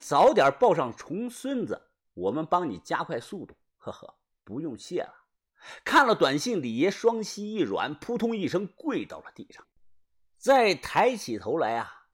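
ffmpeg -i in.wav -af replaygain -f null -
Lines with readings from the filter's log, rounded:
track_gain = +4.9 dB
track_peak = 0.208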